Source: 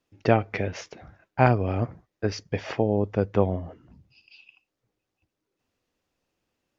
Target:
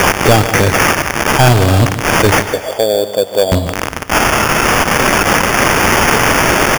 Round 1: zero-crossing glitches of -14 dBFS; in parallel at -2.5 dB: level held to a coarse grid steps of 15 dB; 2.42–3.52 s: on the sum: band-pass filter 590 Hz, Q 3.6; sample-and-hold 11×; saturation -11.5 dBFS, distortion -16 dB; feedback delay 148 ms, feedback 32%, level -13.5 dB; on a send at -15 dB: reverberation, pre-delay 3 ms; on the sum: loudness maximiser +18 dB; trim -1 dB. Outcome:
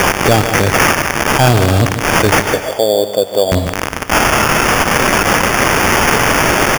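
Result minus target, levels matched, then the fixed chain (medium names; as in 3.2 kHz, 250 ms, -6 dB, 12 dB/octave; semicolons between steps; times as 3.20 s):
saturation: distortion -7 dB
zero-crossing glitches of -14 dBFS; in parallel at -2.5 dB: level held to a coarse grid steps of 15 dB; 2.42–3.52 s: on the sum: band-pass filter 590 Hz, Q 3.6; sample-and-hold 11×; saturation -19.5 dBFS, distortion -9 dB; feedback delay 148 ms, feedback 32%, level -13.5 dB; on a send at -15 dB: reverberation, pre-delay 3 ms; on the sum: loudness maximiser +18 dB; trim -1 dB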